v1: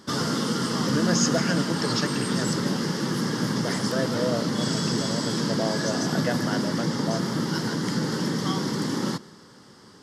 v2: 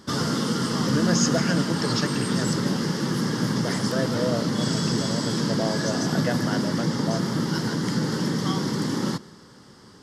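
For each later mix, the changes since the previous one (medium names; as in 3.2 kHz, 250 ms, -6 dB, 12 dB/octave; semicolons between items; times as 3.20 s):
master: add bass shelf 89 Hz +9.5 dB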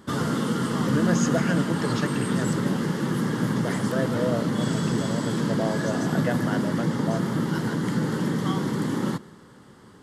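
master: add peaking EQ 5.2 kHz -13.5 dB 0.63 oct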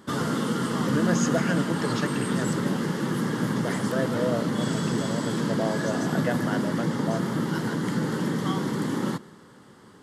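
master: add bass shelf 89 Hz -9.5 dB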